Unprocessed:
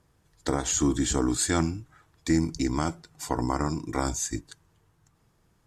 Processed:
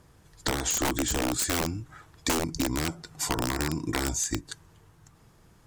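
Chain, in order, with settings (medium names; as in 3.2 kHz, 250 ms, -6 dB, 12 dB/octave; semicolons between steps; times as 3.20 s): integer overflow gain 18 dB; compression, threshold -34 dBFS, peak gain reduction 12.5 dB; trim +8.5 dB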